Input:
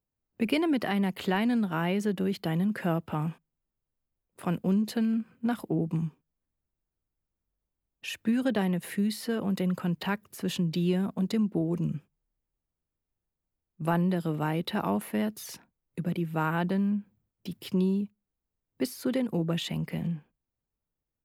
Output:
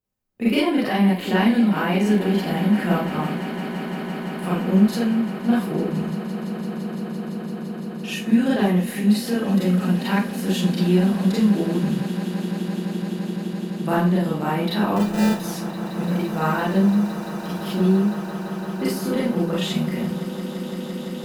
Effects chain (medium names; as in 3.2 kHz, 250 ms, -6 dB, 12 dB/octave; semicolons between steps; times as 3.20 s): Chebyshev shaper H 7 -34 dB, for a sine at -12.5 dBFS; 14.96–15.40 s: sample-rate reducer 1.1 kHz, jitter 0%; on a send: echo with a slow build-up 170 ms, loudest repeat 8, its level -17 dB; on the sum: Schroeder reverb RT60 0.33 s, combs from 30 ms, DRR -7 dB